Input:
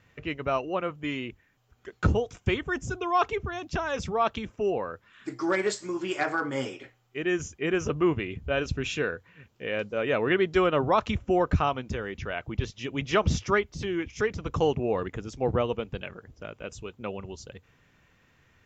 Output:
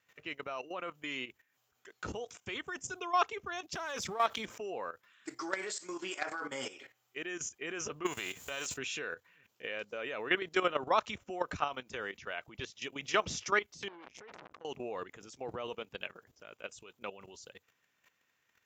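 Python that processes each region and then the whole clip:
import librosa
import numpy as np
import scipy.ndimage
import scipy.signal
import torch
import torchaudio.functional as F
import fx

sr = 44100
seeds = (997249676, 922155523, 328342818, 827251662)

y = fx.chain(x, sr, fx.halfwave_gain(db=-3.0),
    fx.notch(hz=2700.0, q=16.0),
    fx.env_flatten(amount_pct=50), at=(3.73, 4.58))
y = fx.envelope_flatten(y, sr, power=0.6, at=(8.05, 8.76), fade=0.02)
y = fx.peak_eq(y, sr, hz=7100.0, db=11.5, octaves=0.32, at=(8.05, 8.76), fade=0.02)
y = fx.chain(y, sr, fx.lowpass(hz=1400.0, slope=6),
    fx.over_compress(threshold_db=-37.0, ratio=-1.0),
    fx.transformer_sat(knee_hz=1800.0), at=(13.88, 14.65))
y = fx.highpass(y, sr, hz=730.0, slope=6)
y = fx.high_shelf(y, sr, hz=6800.0, db=11.0)
y = fx.level_steps(y, sr, step_db=13)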